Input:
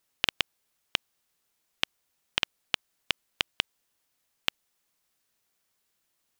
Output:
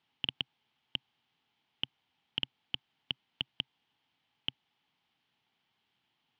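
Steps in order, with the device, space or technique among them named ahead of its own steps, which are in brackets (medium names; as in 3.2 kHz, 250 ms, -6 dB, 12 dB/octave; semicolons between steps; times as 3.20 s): guitar amplifier (valve stage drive 27 dB, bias 0.5; tone controls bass +7 dB, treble +4 dB; cabinet simulation 110–3800 Hz, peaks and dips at 130 Hz +4 dB, 260 Hz +4 dB, 560 Hz -6 dB, 840 Hz +10 dB, 2.2 kHz +3 dB, 3.1 kHz +9 dB); trim +1.5 dB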